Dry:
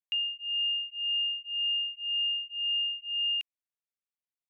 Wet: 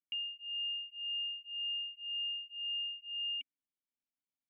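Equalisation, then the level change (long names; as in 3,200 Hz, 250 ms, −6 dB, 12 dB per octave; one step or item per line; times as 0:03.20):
formant resonators in series i
+8.5 dB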